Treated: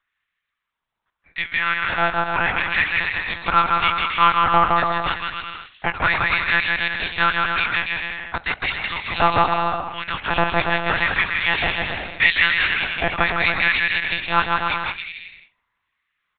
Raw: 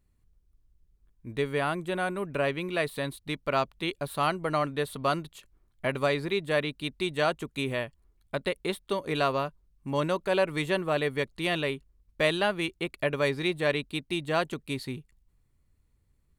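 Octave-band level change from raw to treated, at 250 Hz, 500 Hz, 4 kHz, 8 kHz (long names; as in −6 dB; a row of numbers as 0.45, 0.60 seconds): 0.0 dB, −1.0 dB, +10.5 dB, below −30 dB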